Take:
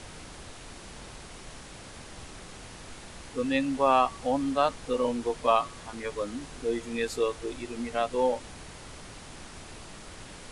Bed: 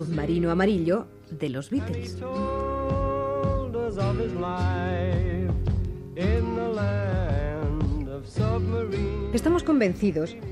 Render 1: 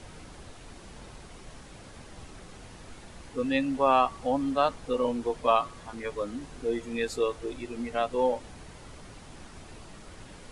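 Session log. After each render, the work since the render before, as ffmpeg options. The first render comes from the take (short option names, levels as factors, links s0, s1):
-af "afftdn=nr=6:nf=-46"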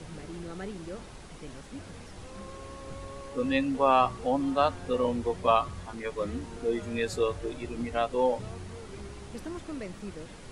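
-filter_complex "[1:a]volume=0.141[s0];[0:a][s0]amix=inputs=2:normalize=0"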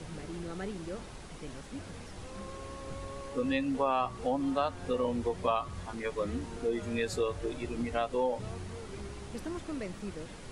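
-af "acompressor=threshold=0.0398:ratio=2.5"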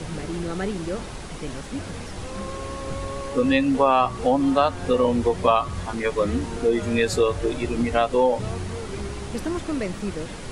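-af "volume=3.55"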